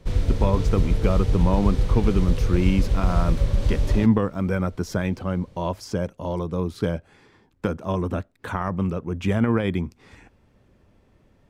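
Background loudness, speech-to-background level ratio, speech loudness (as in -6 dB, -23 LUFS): -25.0 LUFS, -0.5 dB, -25.5 LUFS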